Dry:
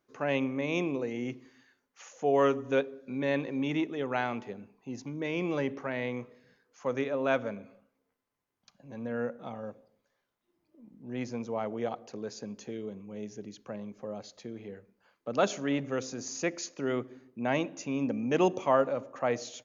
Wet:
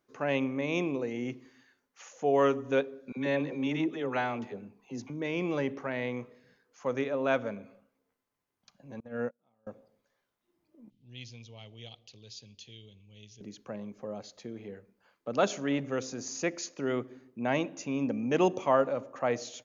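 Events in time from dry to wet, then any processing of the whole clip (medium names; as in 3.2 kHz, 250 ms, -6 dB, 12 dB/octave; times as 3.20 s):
3.12–5.10 s: phase dispersion lows, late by 51 ms, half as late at 610 Hz
9.00–9.67 s: gate -34 dBFS, range -33 dB
10.90–13.41 s: FFT filter 110 Hz 0 dB, 180 Hz -17 dB, 1.5 kHz -23 dB, 3.2 kHz +9 dB, 8.2 kHz -8 dB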